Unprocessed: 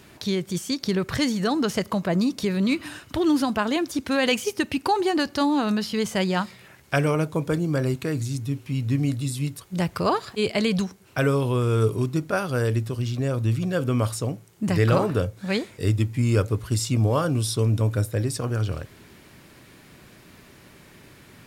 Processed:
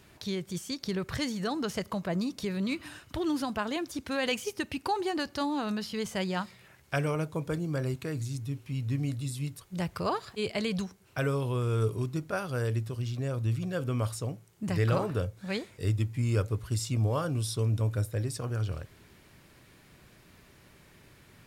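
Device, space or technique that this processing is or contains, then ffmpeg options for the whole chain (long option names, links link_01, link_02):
low shelf boost with a cut just above: -af "lowshelf=frequency=75:gain=6.5,equalizer=frequency=260:width_type=o:width=0.96:gain=-3,volume=-7.5dB"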